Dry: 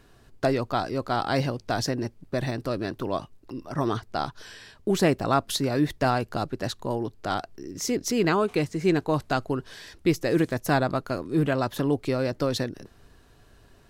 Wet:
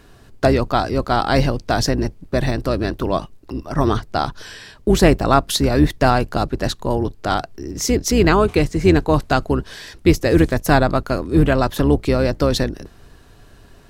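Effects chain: octave divider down 2 oct, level -2 dB; trim +8 dB

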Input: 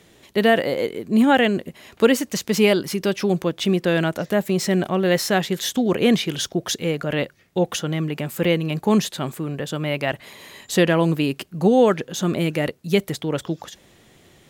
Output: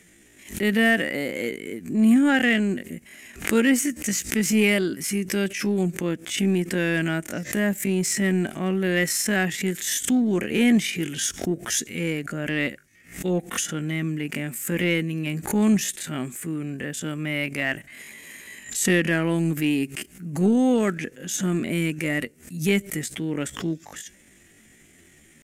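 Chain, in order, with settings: graphic EQ 125/250/500/1000/2000/4000/8000 Hz -7/+4/-7/-11/+8/-11/+9 dB; tempo 0.57×; in parallel at -9 dB: hard clipper -20 dBFS, distortion -9 dB; on the sum: resampled via 32 kHz; swell ahead of each attack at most 140 dB/s; trim -3 dB

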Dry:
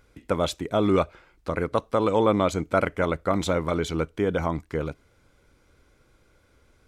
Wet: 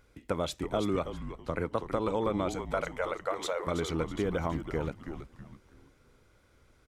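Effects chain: compression, threshold -23 dBFS, peak gain reduction 7.5 dB; 2.55–3.67 s: brick-wall FIR high-pass 430 Hz; 4.23–4.66 s: short-mantissa float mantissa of 6-bit; on a send: frequency-shifting echo 326 ms, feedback 35%, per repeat -140 Hz, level -8 dB; 0.65–1.86 s: on the sum: three bands expanded up and down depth 40%; trim -3.5 dB

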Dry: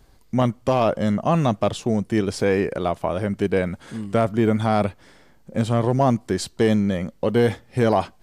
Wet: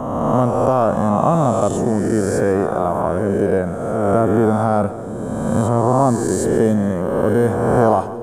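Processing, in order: reverse spectral sustain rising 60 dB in 1.88 s; high-order bell 3.2 kHz -16 dB; on a send: two-band feedback delay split 630 Hz, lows 771 ms, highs 141 ms, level -15 dB; on the sum: trim +1.5 dB

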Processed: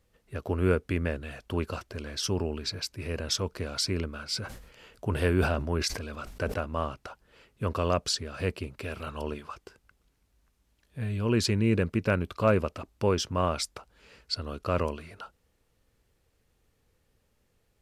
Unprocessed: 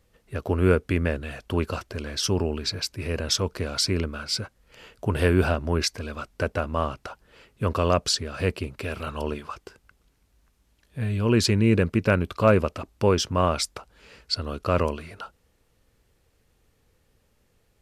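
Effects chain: 4.34–6.58 s: decay stretcher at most 69 dB/s; trim -5 dB

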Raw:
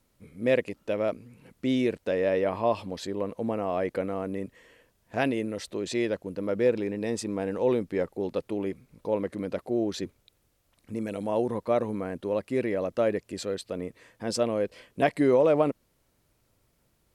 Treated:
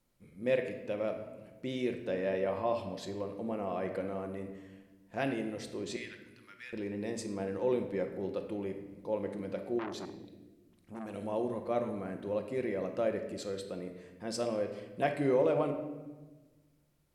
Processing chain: 5.96–6.73 s: high-pass 1.5 kHz 24 dB/octave; simulated room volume 820 m³, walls mixed, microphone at 0.89 m; 9.79–11.14 s: transformer saturation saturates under 1.4 kHz; trim -8 dB

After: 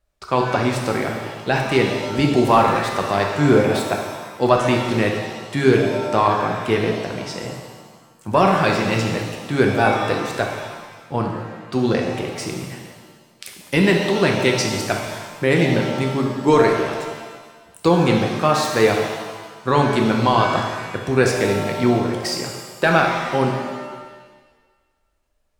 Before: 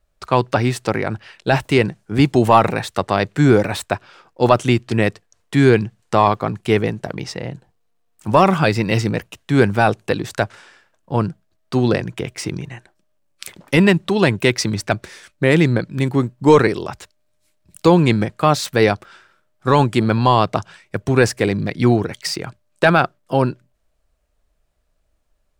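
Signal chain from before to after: bass shelf 150 Hz -3.5 dB; pitch-shifted reverb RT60 1.4 s, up +7 st, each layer -8 dB, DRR 1 dB; trim -3.5 dB

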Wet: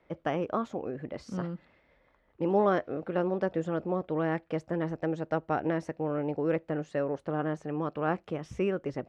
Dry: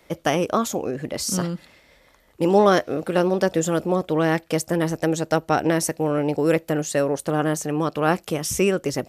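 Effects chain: low-pass 2 kHz 12 dB/octave; trim -9 dB

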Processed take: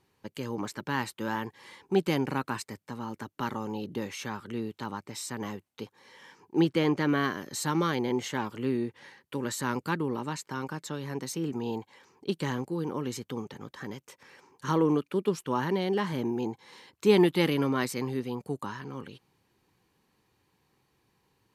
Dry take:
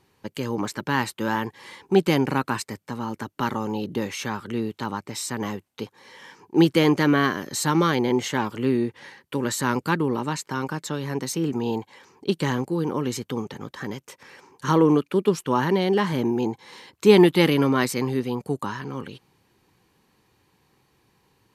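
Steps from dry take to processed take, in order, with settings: 6.60–7.09 s: treble shelf 6.2 kHz -9.5 dB; trim -7 dB

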